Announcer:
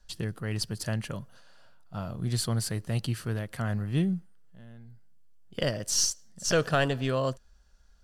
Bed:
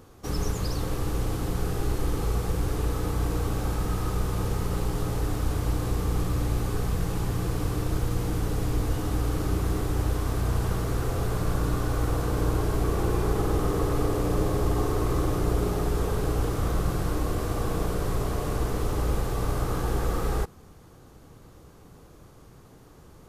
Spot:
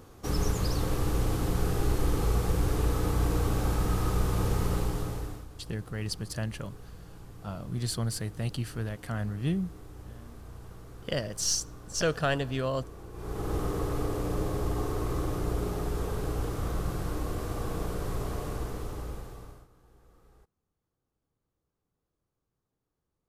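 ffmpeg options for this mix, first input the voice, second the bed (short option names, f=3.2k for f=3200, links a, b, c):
-filter_complex "[0:a]adelay=5500,volume=-2.5dB[a];[1:a]volume=14.5dB,afade=t=out:st=4.68:d=0.79:silence=0.1,afade=t=in:st=13.13:d=0.42:silence=0.188365,afade=t=out:st=18.36:d=1.32:silence=0.0398107[b];[a][b]amix=inputs=2:normalize=0"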